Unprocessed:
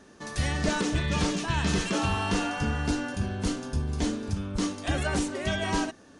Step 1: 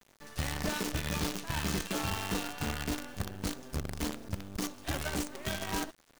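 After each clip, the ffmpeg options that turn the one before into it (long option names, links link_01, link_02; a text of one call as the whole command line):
ffmpeg -i in.wav -af "acrusher=bits=5:dc=4:mix=0:aa=0.000001,volume=-7.5dB" out.wav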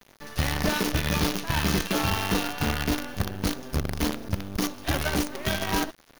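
ffmpeg -i in.wav -af "equalizer=frequency=7800:width_type=o:width=0.26:gain=-12,volume=8.5dB" out.wav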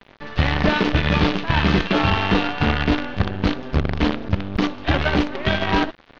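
ffmpeg -i in.wav -af "lowpass=frequency=3700:width=0.5412,lowpass=frequency=3700:width=1.3066,volume=7.5dB" out.wav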